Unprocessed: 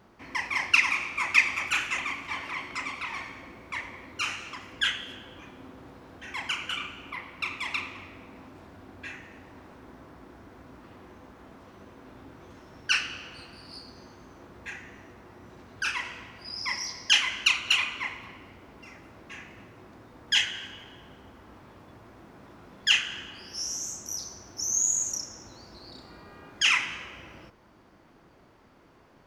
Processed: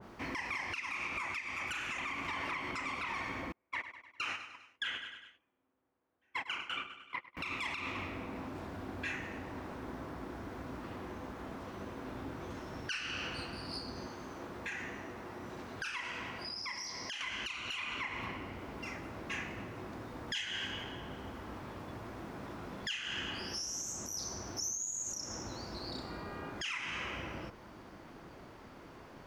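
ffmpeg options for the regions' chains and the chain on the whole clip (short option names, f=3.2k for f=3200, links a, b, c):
-filter_complex "[0:a]asettb=1/sr,asplit=3[a][b][c];[a]atrim=end=3.524[d];[b]atrim=start=3.52:end=7.37,asetpts=PTS-STARTPTS,afade=t=in:d=0.004:c=qsin,afade=t=out:st=3.846:d=0.004:c=qsin,agate=range=-38dB:threshold=-36dB:ratio=16:release=100:detection=peak,bass=f=250:g=-8,treble=f=4k:g=-10,aecho=1:1:100|200|300|400:0.141|0.072|0.0367|0.0187,atrim=end_sample=169785[e];[c]atrim=start=7.366[f];[d][e]acrossfade=d=0.004:c1=hsin:c2=qsin[g];[g][f]acrossfade=d=0.004:c1=qsin:c2=hsin,asettb=1/sr,asplit=3[h][i][j];[h]atrim=end=14.074[k];[i]atrim=start=14.07:end=17.21,asetpts=PTS-STARTPTS,afade=t=in:d=0.004:c=qsin,afade=t=out:st=3.136:d=0.004:c=qsin,lowshelf=f=130:g=-8,acompressor=threshold=-41dB:ratio=6:attack=3.2:release=140:knee=1:detection=peak[l];[j]atrim=start=17.206[m];[k][l]acrossfade=d=0.004:c1=hsin:c2=qsin[n];[n][m]acrossfade=d=0.004:c1=qsin:c2=hsin,acompressor=threshold=-33dB:ratio=6,alimiter=level_in=8.5dB:limit=-24dB:level=0:latency=1:release=131,volume=-8.5dB,adynamicequalizer=threshold=0.002:dfrequency=1800:dqfactor=0.7:tfrequency=1800:tqfactor=0.7:attack=5:release=100:ratio=0.375:range=2:mode=cutabove:tftype=highshelf,volume=5.5dB"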